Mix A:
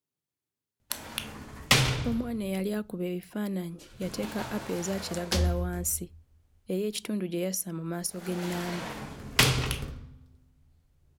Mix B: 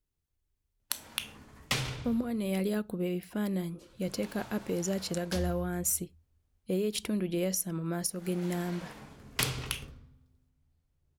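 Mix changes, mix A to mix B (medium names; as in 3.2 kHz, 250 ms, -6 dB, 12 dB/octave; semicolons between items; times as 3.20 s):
speech: remove high-pass 140 Hz 24 dB/octave; background -9.5 dB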